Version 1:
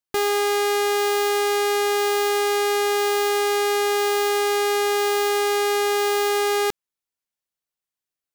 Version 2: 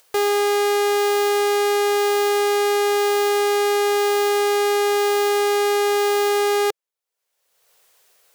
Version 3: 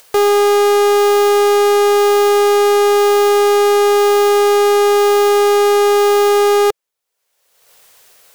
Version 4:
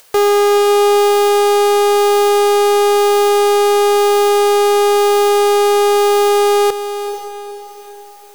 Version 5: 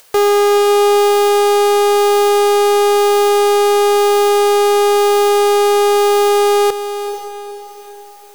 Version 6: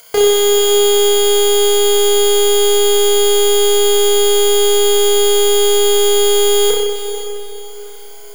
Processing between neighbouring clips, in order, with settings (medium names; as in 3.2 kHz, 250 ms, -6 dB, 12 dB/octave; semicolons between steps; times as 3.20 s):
resonant low shelf 350 Hz -9 dB, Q 3; upward compressor, threshold -34 dBFS
in parallel at -11 dB: companded quantiser 4-bit; on the sum: saturation -14.5 dBFS, distortion -13 dB; trim +8.5 dB
echo that smears into a reverb 466 ms, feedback 42%, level -10 dB
no audible change
rippled EQ curve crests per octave 1.8, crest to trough 14 dB; flutter echo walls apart 5.4 m, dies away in 1 s; trim -1 dB